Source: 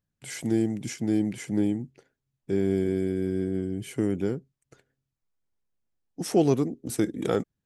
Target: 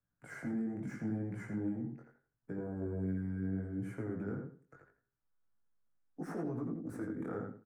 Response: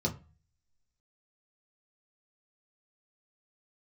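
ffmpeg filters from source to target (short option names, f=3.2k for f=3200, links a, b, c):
-filter_complex "[0:a]acrossover=split=220[a][b];[b]acompressor=threshold=-27dB:ratio=6[c];[a][c]amix=inputs=2:normalize=0,asettb=1/sr,asplit=3[d][e][f];[d]atrim=end=2.564[g];[e]atrim=start=2.56:end=3.04,asetpts=PTS-STARTPTS,afade=t=in:d=0.004:c=qsin,afade=t=out:st=0.476:d=0.004:c=qsin,equalizer=f=125:t=o:w=1:g=5,equalizer=f=250:t=o:w=1:g=-4,equalizer=f=500:t=o:w=1:g=7,equalizer=f=1k:t=o:w=1:g=12,equalizer=f=2k:t=o:w=1:g=-11,equalizer=f=4k:t=o:w=1:g=-11,equalizer=f=8k:t=o:w=1:g=3[h];[f]atrim=start=3.036[i];[g][h]acrossfade=d=0.004:c1=hsin:c2=qsin[j];[j][i]acrossfade=d=0.004:c1=qsin:c2=hsin,acrossover=split=140|1600[k][l][m];[m]asoftclip=type=tanh:threshold=-36.5dB[n];[k][l][n]amix=inputs=3:normalize=0,highshelf=f=2.2k:t=q:w=3:g=-14,alimiter=level_in=1.5dB:limit=-24dB:level=0:latency=1:release=80,volume=-1.5dB,bandreject=f=370:w=12,asplit=2[o][p];[p]adelay=84,lowpass=f=4.3k:p=1,volume=-4dB,asplit=2[q][r];[r]adelay=84,lowpass=f=4.3k:p=1,volume=0.26,asplit=2[s][t];[t]adelay=84,lowpass=f=4.3k:p=1,volume=0.26,asplit=2[u][v];[v]adelay=84,lowpass=f=4.3k:p=1,volume=0.26[w];[q][s][u][w]amix=inputs=4:normalize=0[x];[o][x]amix=inputs=2:normalize=0,flanger=delay=16.5:depth=5.8:speed=0.76,volume=-2.5dB"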